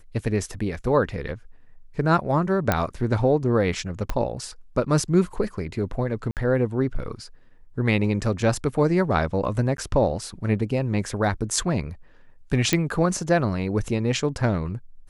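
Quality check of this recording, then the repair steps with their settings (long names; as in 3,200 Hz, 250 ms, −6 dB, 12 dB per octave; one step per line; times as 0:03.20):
0:02.72: click −6 dBFS
0:04.10: click −12 dBFS
0:06.31–0:06.37: drop-out 58 ms
0:09.77–0:09.78: drop-out 12 ms
0:12.73: click −5 dBFS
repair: click removal
repair the gap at 0:06.31, 58 ms
repair the gap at 0:09.77, 12 ms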